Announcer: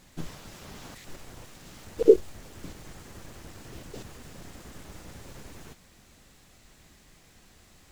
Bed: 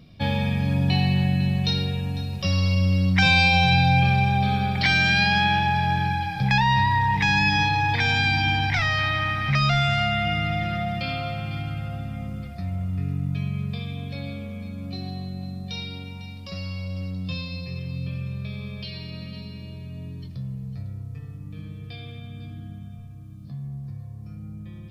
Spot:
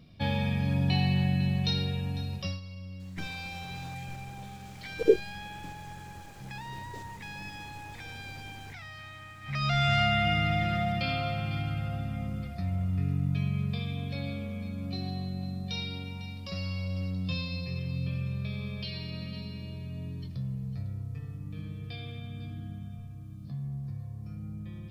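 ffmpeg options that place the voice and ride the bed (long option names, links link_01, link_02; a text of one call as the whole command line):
ffmpeg -i stem1.wav -i stem2.wav -filter_complex "[0:a]adelay=3000,volume=-5dB[link_01];[1:a]volume=15dB,afade=type=out:start_time=2.34:duration=0.26:silence=0.141254,afade=type=in:start_time=9.41:duration=0.55:silence=0.1[link_02];[link_01][link_02]amix=inputs=2:normalize=0" out.wav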